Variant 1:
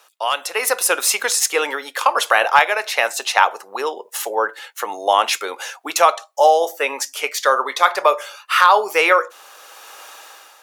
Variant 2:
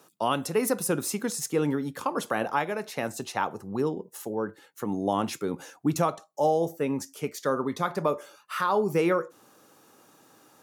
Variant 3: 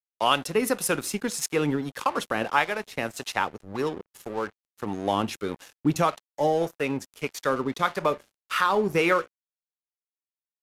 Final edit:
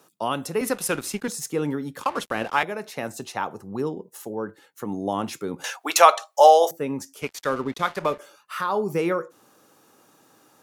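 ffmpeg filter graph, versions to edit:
-filter_complex "[2:a]asplit=3[a][b][c];[1:a]asplit=5[d][e][f][g][h];[d]atrim=end=0.612[i];[a]atrim=start=0.608:end=1.282[j];[e]atrim=start=1.278:end=2.032[k];[b]atrim=start=2.028:end=2.632[l];[f]atrim=start=2.628:end=5.642[m];[0:a]atrim=start=5.638:end=6.712[n];[g]atrim=start=6.708:end=7.222[o];[c]atrim=start=7.218:end=8.192[p];[h]atrim=start=8.188[q];[i][j]acrossfade=d=0.004:c1=hsin:c2=hsin[r];[r][k]acrossfade=d=0.004:c1=hsin:c2=hsin[s];[s][l]acrossfade=d=0.004:c1=hsin:c2=hsin[t];[t][m]acrossfade=d=0.004:c1=hsin:c2=hsin[u];[u][n]acrossfade=d=0.004:c1=hsin:c2=hsin[v];[v][o]acrossfade=d=0.004:c1=hsin:c2=hsin[w];[w][p]acrossfade=d=0.004:c1=hsin:c2=hsin[x];[x][q]acrossfade=d=0.004:c1=hsin:c2=hsin"

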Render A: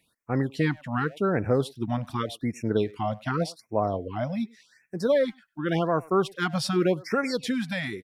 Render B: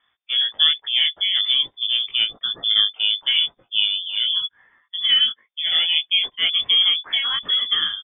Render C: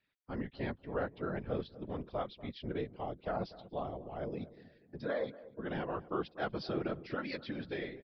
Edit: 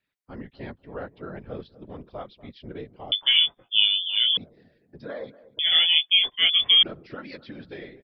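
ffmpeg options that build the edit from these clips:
-filter_complex "[1:a]asplit=2[a][b];[2:a]asplit=3[c][d][e];[c]atrim=end=3.122[f];[a]atrim=start=3.118:end=4.372[g];[d]atrim=start=4.368:end=5.592[h];[b]atrim=start=5.588:end=6.832[i];[e]atrim=start=6.828[j];[f][g]acrossfade=d=0.004:c1=hsin:c2=hsin[k];[k][h]acrossfade=d=0.004:c1=hsin:c2=hsin[l];[l][i]acrossfade=d=0.004:c1=hsin:c2=hsin[m];[m][j]acrossfade=d=0.004:c1=hsin:c2=hsin"

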